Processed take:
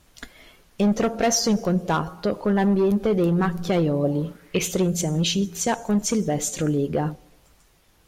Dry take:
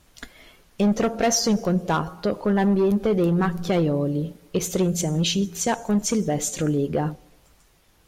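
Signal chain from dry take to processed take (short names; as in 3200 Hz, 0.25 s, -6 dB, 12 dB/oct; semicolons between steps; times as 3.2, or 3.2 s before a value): 4.03–4.7 bell 660 Hz -> 3100 Hz +15 dB 0.71 oct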